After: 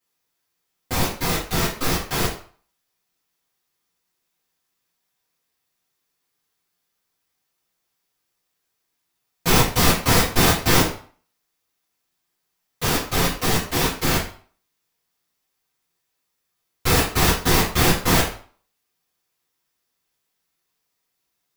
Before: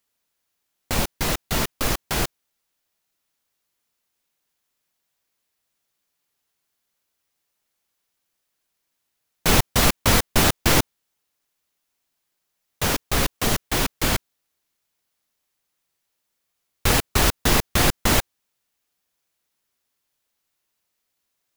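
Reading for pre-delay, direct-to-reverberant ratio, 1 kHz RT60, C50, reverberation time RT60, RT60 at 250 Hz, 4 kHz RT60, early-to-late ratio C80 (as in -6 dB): 3 ms, -11.0 dB, 0.50 s, 6.5 dB, 0.45 s, 0.40 s, 0.40 s, 10.5 dB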